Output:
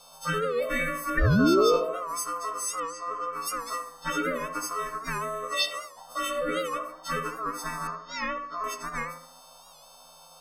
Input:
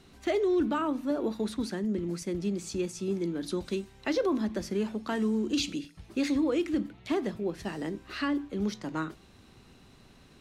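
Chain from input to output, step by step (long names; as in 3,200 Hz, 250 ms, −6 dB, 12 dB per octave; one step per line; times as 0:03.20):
every partial snapped to a pitch grid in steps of 4 semitones
0:00.62–0:01.10: high-shelf EQ 2,100 Hz +8 dB
0:07.87–0:08.64: Chebyshev band-pass filter 130–5,500 Hz, order 5
in parallel at −1 dB: brickwall limiter −21.5 dBFS, peak gain reduction 10.5 dB
0:01.17–0:01.77: on the sum: sound drawn into the spectrogram fall 340–890 Hz −15 dBFS
ring modulation 860 Hz
phaser swept by the level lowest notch 320 Hz, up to 1,800 Hz, full sweep at −16.5 dBFS
0:02.80–0:03.33: high-frequency loss of the air 140 metres
on a send: tape delay 72 ms, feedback 60%, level −5 dB, low-pass 1,000 Hz
on the sum: wow of a warped record 78 rpm, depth 100 cents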